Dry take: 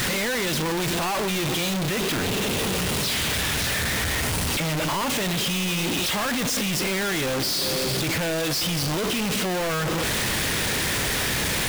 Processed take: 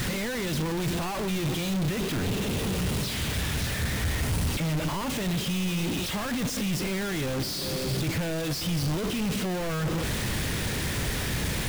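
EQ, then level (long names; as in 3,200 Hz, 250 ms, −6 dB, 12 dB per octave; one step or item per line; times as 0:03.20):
low-shelf EQ 260 Hz +11.5 dB
−8.0 dB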